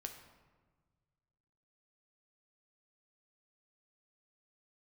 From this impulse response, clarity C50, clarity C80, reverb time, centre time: 8.0 dB, 9.5 dB, 1.4 s, 23 ms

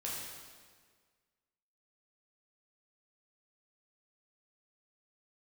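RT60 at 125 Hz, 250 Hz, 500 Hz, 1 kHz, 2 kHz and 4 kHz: 1.7 s, 1.7 s, 1.8 s, 1.6 s, 1.5 s, 1.4 s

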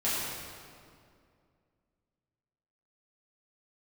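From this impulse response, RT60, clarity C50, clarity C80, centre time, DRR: 2.3 s, -2.5 dB, -1.0 dB, 137 ms, -11.0 dB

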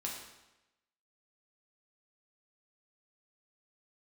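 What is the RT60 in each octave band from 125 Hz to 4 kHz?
0.95 s, 0.95 s, 1.0 s, 0.95 s, 0.95 s, 0.90 s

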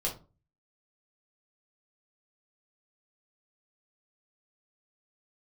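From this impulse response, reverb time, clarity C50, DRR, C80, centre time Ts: 0.35 s, 10.5 dB, -3.0 dB, 17.5 dB, 20 ms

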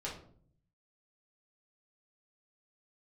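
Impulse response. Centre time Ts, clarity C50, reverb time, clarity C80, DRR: 29 ms, 6.5 dB, 0.55 s, 11.0 dB, -6.0 dB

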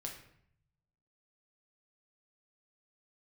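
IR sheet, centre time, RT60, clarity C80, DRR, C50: 27 ms, 0.65 s, 10.0 dB, -0.5 dB, 6.5 dB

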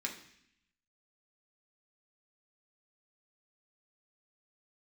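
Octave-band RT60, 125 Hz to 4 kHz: 1.0 s, 0.95 s, 0.65 s, 0.70 s, 0.90 s, 0.85 s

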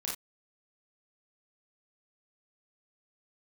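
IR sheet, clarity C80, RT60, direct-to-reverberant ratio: 12.5 dB, no single decay rate, -4.0 dB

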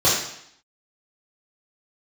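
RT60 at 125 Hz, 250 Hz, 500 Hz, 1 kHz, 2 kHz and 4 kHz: 0.70 s, 0.75 s, 0.65 s, 0.75 s, 0.75 s, 0.75 s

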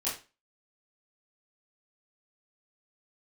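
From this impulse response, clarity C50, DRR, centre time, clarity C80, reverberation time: 6.5 dB, -10.0 dB, 34 ms, 12.5 dB, 0.30 s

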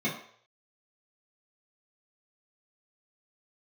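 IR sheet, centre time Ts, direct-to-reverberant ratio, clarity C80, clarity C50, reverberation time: 28 ms, -9.5 dB, 11.0 dB, 7.5 dB, 0.60 s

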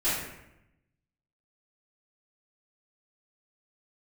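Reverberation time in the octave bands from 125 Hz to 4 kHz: 1.3 s, 1.1 s, 0.90 s, 0.85 s, 0.85 s, 0.60 s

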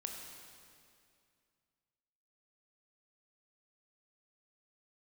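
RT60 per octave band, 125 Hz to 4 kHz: 2.7 s, 2.6 s, 2.4 s, 2.3 s, 2.2 s, 2.1 s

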